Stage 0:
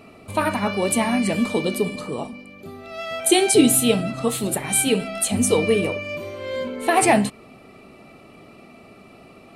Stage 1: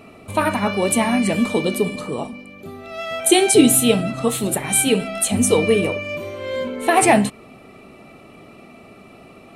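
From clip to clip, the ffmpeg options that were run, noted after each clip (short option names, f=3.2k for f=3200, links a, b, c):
-af "equalizer=f=4.7k:w=6.4:g=-5.5,volume=2.5dB"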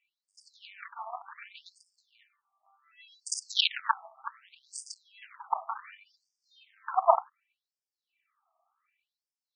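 -af "aeval=exprs='0.891*(cos(1*acos(clip(val(0)/0.891,-1,1)))-cos(1*PI/2))+0.282*(cos(3*acos(clip(val(0)/0.891,-1,1)))-cos(3*PI/2))+0.398*(cos(4*acos(clip(val(0)/0.891,-1,1)))-cos(4*PI/2))+0.251*(cos(6*acos(clip(val(0)/0.891,-1,1)))-cos(6*PI/2))+0.02*(cos(8*acos(clip(val(0)/0.891,-1,1)))-cos(8*PI/2))':c=same,aemphasis=mode=reproduction:type=50fm,afftfilt=real='re*between(b*sr/1024,890*pow(6700/890,0.5+0.5*sin(2*PI*0.67*pts/sr))/1.41,890*pow(6700/890,0.5+0.5*sin(2*PI*0.67*pts/sr))*1.41)':imag='im*between(b*sr/1024,890*pow(6700/890,0.5+0.5*sin(2*PI*0.67*pts/sr))/1.41,890*pow(6700/890,0.5+0.5*sin(2*PI*0.67*pts/sr))*1.41)':win_size=1024:overlap=0.75,volume=1.5dB"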